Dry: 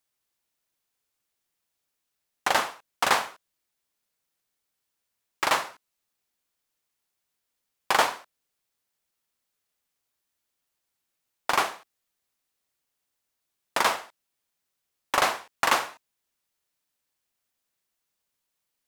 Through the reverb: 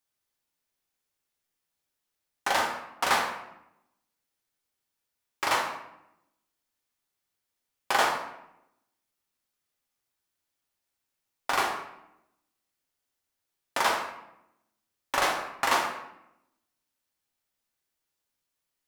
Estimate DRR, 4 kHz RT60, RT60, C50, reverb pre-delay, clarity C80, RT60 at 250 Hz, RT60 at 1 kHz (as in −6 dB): 0.5 dB, 0.55 s, 0.85 s, 5.5 dB, 3 ms, 8.5 dB, 1.1 s, 0.80 s